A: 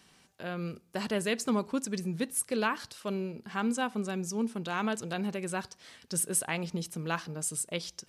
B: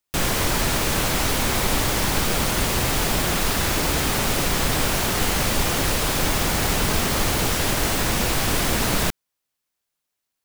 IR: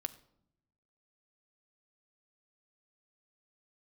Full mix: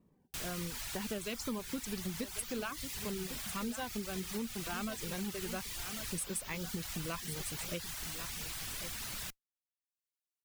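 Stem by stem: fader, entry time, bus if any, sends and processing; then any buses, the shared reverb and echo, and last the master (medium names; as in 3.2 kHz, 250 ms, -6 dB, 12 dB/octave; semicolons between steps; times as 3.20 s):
-1.0 dB, 0.00 s, no send, echo send -13 dB, level-controlled noise filter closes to 530 Hz, open at -25.5 dBFS; Shepard-style phaser falling 1.4 Hz
-8.0 dB, 0.20 s, no send, no echo send, amplifier tone stack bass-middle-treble 5-5-5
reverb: none
echo: delay 1097 ms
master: modulation noise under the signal 22 dB; reverb removal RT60 0.64 s; compression, threshold -35 dBFS, peak gain reduction 9.5 dB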